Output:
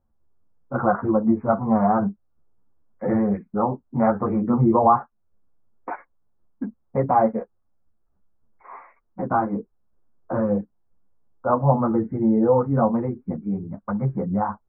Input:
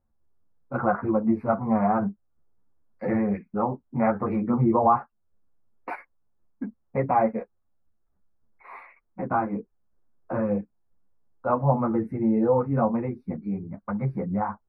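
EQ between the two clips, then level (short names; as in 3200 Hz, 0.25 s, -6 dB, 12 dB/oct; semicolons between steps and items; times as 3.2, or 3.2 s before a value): LPF 1600 Hz 24 dB/oct; +3.5 dB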